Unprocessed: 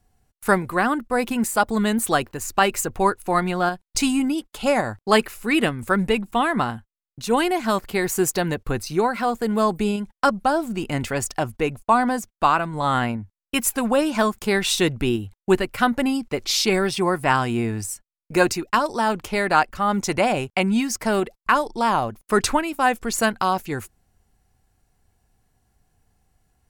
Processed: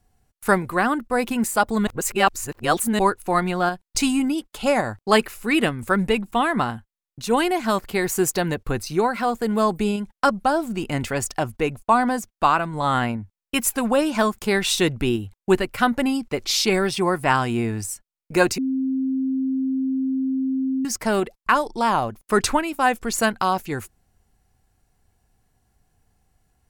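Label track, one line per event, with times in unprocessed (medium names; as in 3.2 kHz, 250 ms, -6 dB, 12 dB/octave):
1.870000	2.990000	reverse
18.580000	20.850000	bleep 264 Hz -20 dBFS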